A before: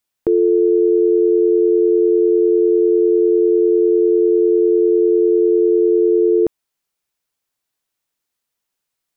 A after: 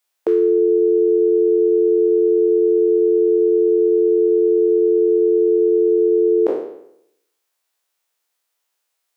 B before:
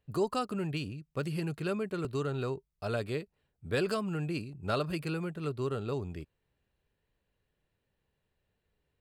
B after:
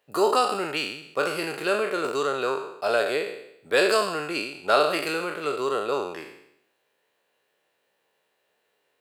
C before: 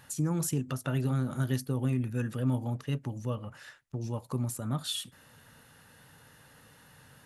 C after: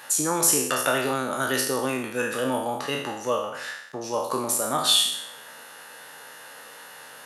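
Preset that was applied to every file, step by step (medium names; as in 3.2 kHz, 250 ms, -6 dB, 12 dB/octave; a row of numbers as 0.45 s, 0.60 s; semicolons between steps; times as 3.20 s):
spectral sustain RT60 0.76 s; Chebyshev high-pass 550 Hz, order 2; peak normalisation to -6 dBFS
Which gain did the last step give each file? +3.5 dB, +11.0 dB, +13.5 dB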